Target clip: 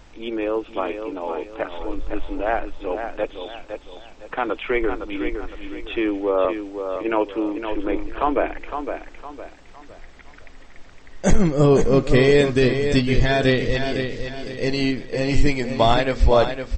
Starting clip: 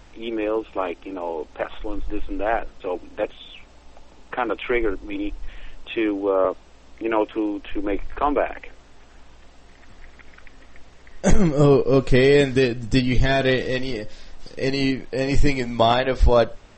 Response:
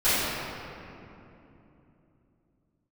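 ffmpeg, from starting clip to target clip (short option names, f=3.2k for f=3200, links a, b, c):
-af "aecho=1:1:510|1020|1530|2040:0.422|0.152|0.0547|0.0197"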